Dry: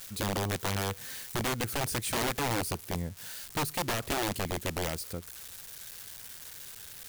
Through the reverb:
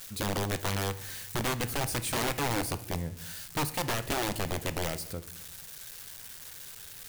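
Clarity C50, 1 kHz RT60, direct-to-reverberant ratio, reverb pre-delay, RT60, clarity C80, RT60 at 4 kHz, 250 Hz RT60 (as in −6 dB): 16.0 dB, 0.65 s, 11.5 dB, 6 ms, 0.70 s, 18.5 dB, 0.55 s, 1.1 s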